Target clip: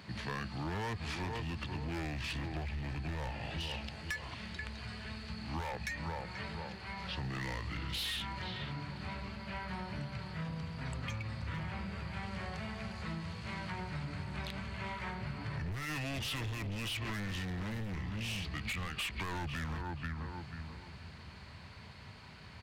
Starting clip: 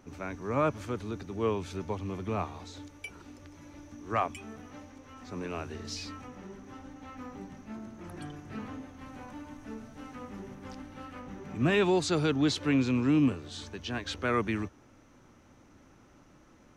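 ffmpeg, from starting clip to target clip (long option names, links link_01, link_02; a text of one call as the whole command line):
ffmpeg -i in.wav -filter_complex "[0:a]acrossover=split=100[link_01][link_02];[link_01]acrusher=bits=5:mix=0:aa=0.5[link_03];[link_03][link_02]amix=inputs=2:normalize=0,firequalizer=gain_entry='entry(150,0);entry(330,-10);entry(3200,8);entry(7600,-1)':delay=0.05:min_phase=1,asplit=2[link_04][link_05];[link_05]adelay=358,lowpass=frequency=1800:poles=1,volume=-10dB,asplit=2[link_06][link_07];[link_07]adelay=358,lowpass=frequency=1800:poles=1,volume=0.33,asplit=2[link_08][link_09];[link_09]adelay=358,lowpass=frequency=1800:poles=1,volume=0.33,asplit=2[link_10][link_11];[link_11]adelay=358,lowpass=frequency=1800:poles=1,volume=0.33[link_12];[link_04][link_06][link_08][link_10][link_12]amix=inputs=5:normalize=0,asplit=2[link_13][link_14];[link_14]aeval=exprs='(mod(26.6*val(0)+1,2)-1)/26.6':channel_layout=same,volume=-8dB[link_15];[link_13][link_15]amix=inputs=2:normalize=0,alimiter=level_in=1dB:limit=-24dB:level=0:latency=1:release=105,volume=-1dB,volume=35.5dB,asoftclip=hard,volume=-35.5dB,asetrate=32667,aresample=44100,asubboost=boost=3:cutoff=94,acompressor=threshold=-43dB:ratio=6,volume=7dB" out.wav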